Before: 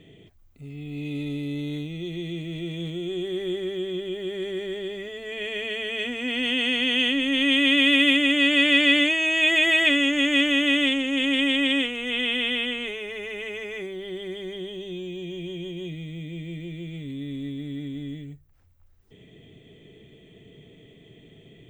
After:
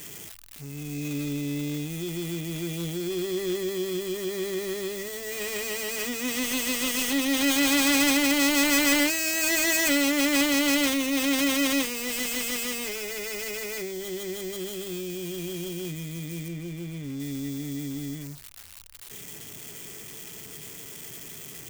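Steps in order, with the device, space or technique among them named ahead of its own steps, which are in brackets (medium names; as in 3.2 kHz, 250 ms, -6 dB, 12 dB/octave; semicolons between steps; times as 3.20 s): budget class-D amplifier (dead-time distortion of 0.13 ms; zero-crossing glitches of -24 dBFS); 16.48–17.20 s: treble shelf 4.1 kHz -9.5 dB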